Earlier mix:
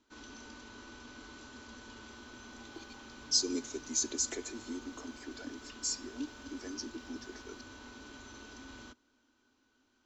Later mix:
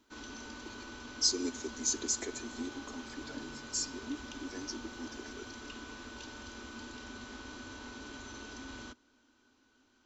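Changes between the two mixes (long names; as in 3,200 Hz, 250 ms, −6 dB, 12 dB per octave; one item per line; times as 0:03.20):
speech: entry −2.10 s
background +4.0 dB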